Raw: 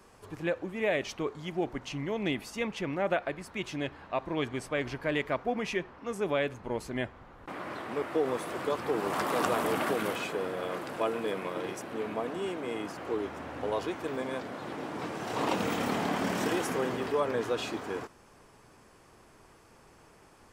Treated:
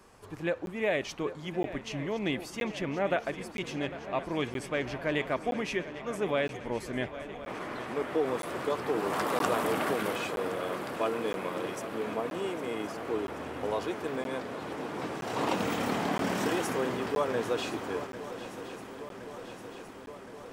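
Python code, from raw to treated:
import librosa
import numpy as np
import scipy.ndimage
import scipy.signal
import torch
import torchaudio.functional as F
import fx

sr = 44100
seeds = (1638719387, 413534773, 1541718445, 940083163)

p1 = x + fx.echo_swing(x, sr, ms=1067, ratio=3, feedback_pct=70, wet_db=-14.5, dry=0)
y = fx.buffer_crackle(p1, sr, first_s=0.66, period_s=0.97, block=512, kind='zero')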